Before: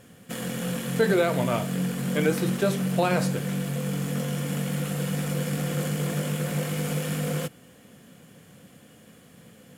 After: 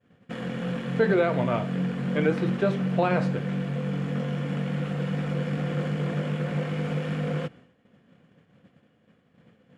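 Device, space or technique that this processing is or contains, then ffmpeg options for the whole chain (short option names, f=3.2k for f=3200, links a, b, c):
hearing-loss simulation: -af "lowpass=2.6k,agate=range=-33dB:threshold=-44dB:ratio=3:detection=peak"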